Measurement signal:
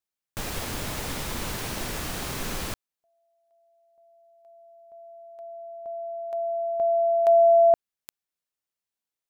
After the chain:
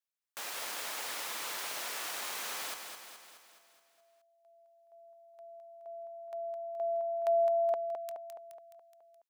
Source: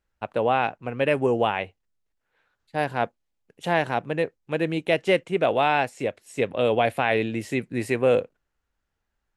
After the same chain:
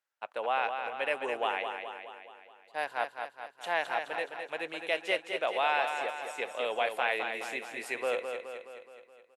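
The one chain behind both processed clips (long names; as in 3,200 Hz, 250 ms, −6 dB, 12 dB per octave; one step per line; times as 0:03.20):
high-pass filter 740 Hz 12 dB per octave
repeating echo 211 ms, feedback 56%, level −6.5 dB
level −5 dB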